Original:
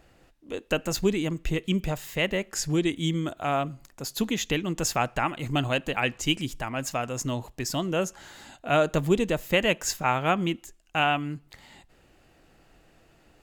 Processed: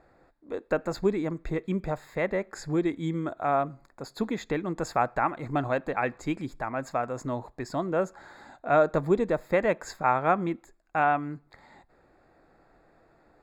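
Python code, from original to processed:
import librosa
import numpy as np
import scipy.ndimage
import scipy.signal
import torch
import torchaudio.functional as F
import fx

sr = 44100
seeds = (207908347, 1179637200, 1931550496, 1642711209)

y = np.convolve(x, np.full(15, 1.0 / 15))[:len(x)]
y = fx.low_shelf(y, sr, hz=300.0, db=-11.5)
y = F.gain(torch.from_numpy(y), 4.5).numpy()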